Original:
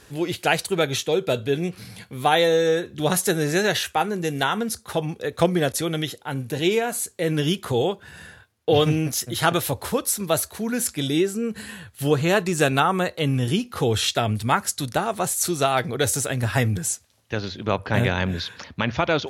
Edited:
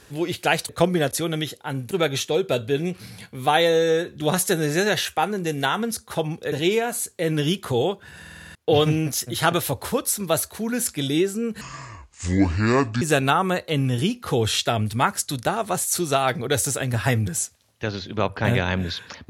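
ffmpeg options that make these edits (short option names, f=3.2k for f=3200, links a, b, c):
-filter_complex "[0:a]asplit=13[a][b][c][d][e][f][g][h][i][j][k][l][m];[a]atrim=end=0.692[n];[b]atrim=start=5.298:end=6.522[o];[c]atrim=start=0.688:end=5.302[p];[d]atrim=start=6.518:end=8.252[q];[e]atrim=start=8.198:end=8.252[r];[f]atrim=start=8.198:end=8.252[s];[g]atrim=start=8.198:end=8.252[t];[h]atrim=start=8.198:end=8.252[u];[i]atrim=start=8.198:end=8.252[v];[j]atrim=start=8.198:end=8.252[w];[k]atrim=start=8.548:end=11.614[x];[l]atrim=start=11.61:end=12.51,asetpts=PTS-STARTPTS,asetrate=28224,aresample=44100[y];[m]atrim=start=12.506[z];[n][o]acrossfade=d=0.004:c1=hsin:c2=hsin[aa];[aa][p]acrossfade=d=0.004:c1=hsin:c2=hsin[ab];[ab][q]acrossfade=d=0.004:c1=hsin:c2=hsin[ac];[ac][r]acrossfade=d=0.004:c1=hsin:c2=hsin[ad];[ad][s]acrossfade=d=0.004:c1=hsin:c2=hsin[ae];[ae][t]acrossfade=d=0.004:c1=hsin:c2=hsin[af];[af][u]acrossfade=d=0.004:c1=hsin:c2=hsin[ag];[ag][v]acrossfade=d=0.004:c1=hsin:c2=hsin[ah];[ah][w]acrossfade=d=0.004:c1=hsin:c2=hsin[ai];[ai][x]acrossfade=d=0.004:c1=hsin:c2=hsin[aj];[aj][y]acrossfade=d=0.004:c1=hsin:c2=hsin[ak];[ak][z]acrossfade=d=0.004:c1=hsin:c2=hsin"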